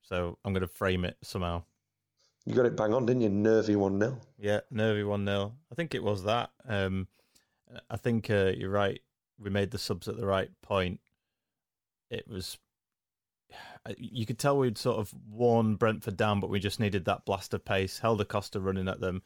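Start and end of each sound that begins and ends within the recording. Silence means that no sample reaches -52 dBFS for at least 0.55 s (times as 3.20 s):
2.42–10.96 s
12.11–12.57 s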